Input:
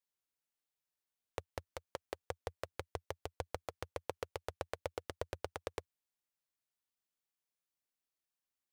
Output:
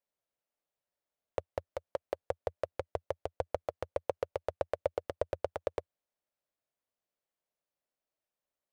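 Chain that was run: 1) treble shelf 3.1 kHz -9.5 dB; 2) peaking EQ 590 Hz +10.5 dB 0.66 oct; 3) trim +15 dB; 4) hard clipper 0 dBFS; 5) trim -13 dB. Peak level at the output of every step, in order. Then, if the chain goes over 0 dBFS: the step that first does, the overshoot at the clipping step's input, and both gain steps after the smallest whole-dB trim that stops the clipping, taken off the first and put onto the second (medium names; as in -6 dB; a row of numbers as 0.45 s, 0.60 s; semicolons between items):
-21.5 dBFS, -18.0 dBFS, -3.0 dBFS, -3.0 dBFS, -16.0 dBFS; nothing clips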